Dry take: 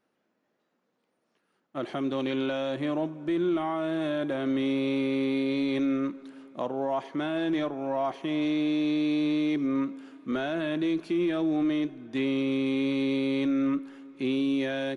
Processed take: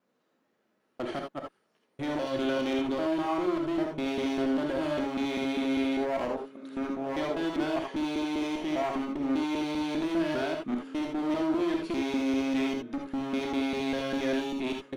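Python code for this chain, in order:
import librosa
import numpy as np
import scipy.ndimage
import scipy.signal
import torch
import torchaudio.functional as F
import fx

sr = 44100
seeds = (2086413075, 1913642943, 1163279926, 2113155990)

y = fx.block_reorder(x, sr, ms=199.0, group=5)
y = fx.clip_asym(y, sr, top_db=-31.5, bottom_db=-25.0)
y = fx.rev_gated(y, sr, seeds[0], gate_ms=100, shape='rising', drr_db=2.0)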